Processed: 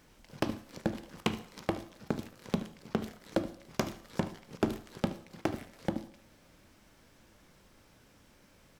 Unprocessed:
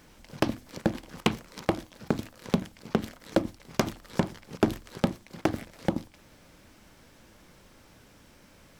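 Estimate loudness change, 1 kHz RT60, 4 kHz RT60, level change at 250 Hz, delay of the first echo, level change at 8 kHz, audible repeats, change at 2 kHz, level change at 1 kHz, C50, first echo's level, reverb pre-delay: −5.5 dB, 0.65 s, 0.65 s, −5.5 dB, 74 ms, −5.5 dB, 1, −5.5 dB, −5.5 dB, 13.0 dB, −16.5 dB, 11 ms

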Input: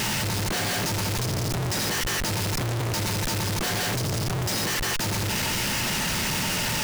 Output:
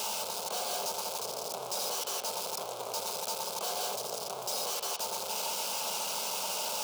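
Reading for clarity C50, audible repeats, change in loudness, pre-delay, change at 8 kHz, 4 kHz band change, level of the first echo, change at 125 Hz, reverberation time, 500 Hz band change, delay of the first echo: 10.0 dB, no echo audible, −8.0 dB, 21 ms, −6.0 dB, −7.5 dB, no echo audible, −32.0 dB, 1.8 s, −5.0 dB, no echo audible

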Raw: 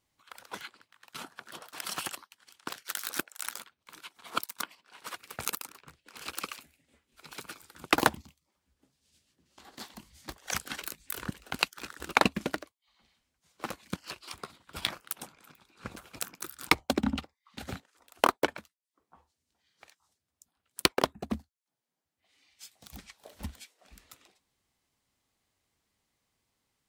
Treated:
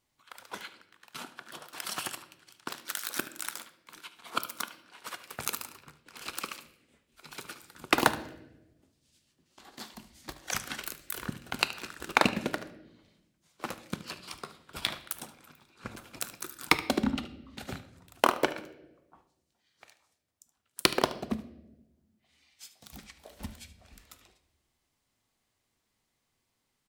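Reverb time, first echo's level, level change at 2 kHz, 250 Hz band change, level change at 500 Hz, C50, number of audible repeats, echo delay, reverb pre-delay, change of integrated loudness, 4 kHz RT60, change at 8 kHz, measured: 0.95 s, −16.0 dB, +0.5 dB, +1.0 dB, +0.5 dB, 12.5 dB, 1, 74 ms, 3 ms, +0.5 dB, 0.75 s, +0.5 dB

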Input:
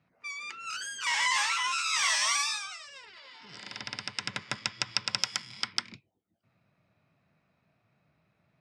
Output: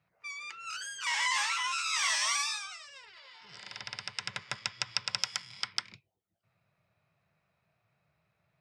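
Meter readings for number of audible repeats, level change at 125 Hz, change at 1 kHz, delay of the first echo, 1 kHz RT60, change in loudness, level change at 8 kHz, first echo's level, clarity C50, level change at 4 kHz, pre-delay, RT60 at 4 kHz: no echo audible, −4.5 dB, −3.0 dB, no echo audible, no reverb audible, −2.5 dB, −2.5 dB, no echo audible, no reverb audible, −2.5 dB, no reverb audible, no reverb audible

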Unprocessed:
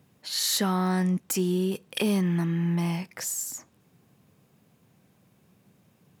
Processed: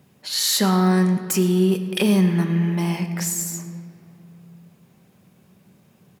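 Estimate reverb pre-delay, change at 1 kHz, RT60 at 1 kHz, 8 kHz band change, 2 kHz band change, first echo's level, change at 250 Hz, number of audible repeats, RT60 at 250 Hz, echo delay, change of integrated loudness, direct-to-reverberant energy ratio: 5 ms, +5.5 dB, 2.3 s, +5.5 dB, +6.0 dB, −18.5 dB, +7.5 dB, 1, 3.3 s, 111 ms, +6.5 dB, 6.5 dB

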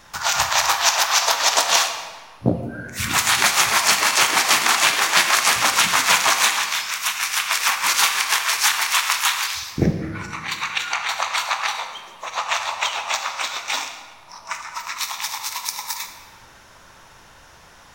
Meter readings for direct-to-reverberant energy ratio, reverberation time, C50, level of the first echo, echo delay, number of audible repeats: 6.0 dB, 1.6 s, 7.5 dB, no echo audible, no echo audible, no echo audible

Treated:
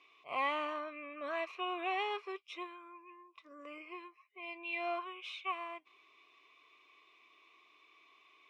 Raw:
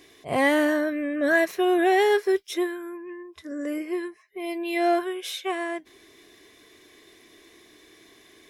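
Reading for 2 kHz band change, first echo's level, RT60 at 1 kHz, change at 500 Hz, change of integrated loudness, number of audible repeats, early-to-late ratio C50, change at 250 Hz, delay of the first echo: −14.5 dB, no echo audible, no reverb audible, −19.0 dB, −15.0 dB, no echo audible, no reverb audible, −24.0 dB, no echo audible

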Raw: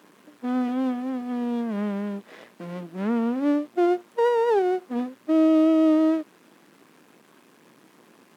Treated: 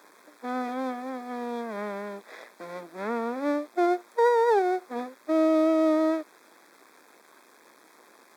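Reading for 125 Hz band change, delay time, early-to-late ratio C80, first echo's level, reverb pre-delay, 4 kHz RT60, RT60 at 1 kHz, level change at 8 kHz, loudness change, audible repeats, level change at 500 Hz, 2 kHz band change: below −10 dB, no echo audible, no reverb audible, no echo audible, no reverb audible, no reverb audible, no reverb audible, can't be measured, −3.0 dB, no echo audible, −1.0 dB, +2.0 dB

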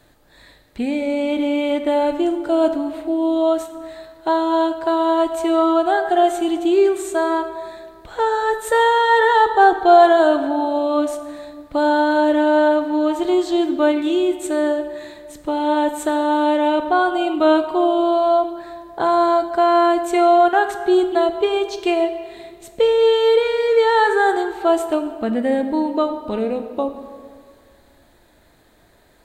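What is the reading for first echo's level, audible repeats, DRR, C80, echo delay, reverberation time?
no echo audible, no echo audible, 7.5 dB, 10.5 dB, no echo audible, 2.0 s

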